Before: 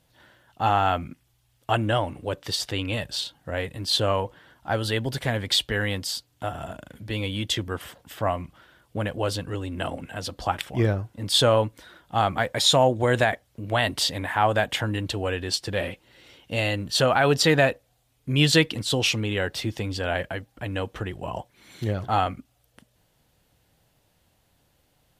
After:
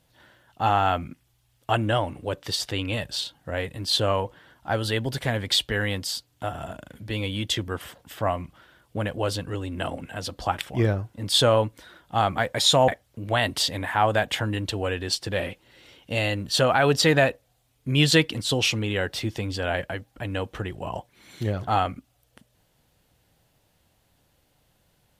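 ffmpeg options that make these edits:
-filter_complex "[0:a]asplit=2[a][b];[a]atrim=end=12.882[c];[b]atrim=start=13.288[d];[c][d]acrossfade=d=0.004:c1=hsin:c2=hsin"

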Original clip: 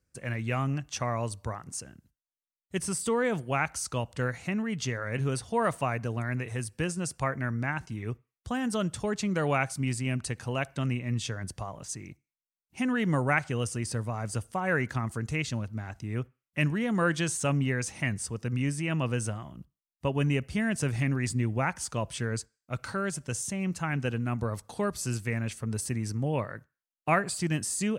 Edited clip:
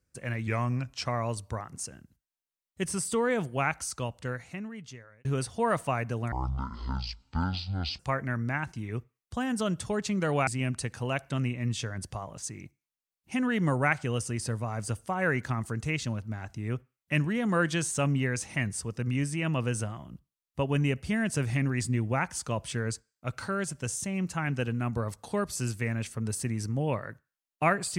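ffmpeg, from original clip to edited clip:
-filter_complex "[0:a]asplit=7[a][b][c][d][e][f][g];[a]atrim=end=0.474[h];[b]atrim=start=0.47:end=1,asetpts=PTS-STARTPTS,asetrate=39690,aresample=44100[i];[c]atrim=start=0.996:end=5.19,asetpts=PTS-STARTPTS,afade=t=out:st=2.614:d=1.58[j];[d]atrim=start=5.19:end=6.264,asetpts=PTS-STARTPTS,afade=t=in:d=0.004:c=hsin[k];[e]atrim=start=6.26:end=7.13,asetpts=PTS-STARTPTS,asetrate=22932,aresample=44100[l];[f]atrim=start=7.126:end=9.612[m];[g]atrim=start=9.928[n];[h][i]acrossfade=d=0.004:c1=hsin:c2=hsin[o];[j][k]concat=n=2:v=0:a=1[p];[o][p]acrossfade=d=0.004:c1=hsin:c2=hsin[q];[q][l]acrossfade=d=0.004:c1=hsin:c2=hsin[r];[r][m]acrossfade=d=0.004:c1=hsin:c2=hsin[s];[s][n]acrossfade=d=0.004:c1=hsin:c2=hsin"

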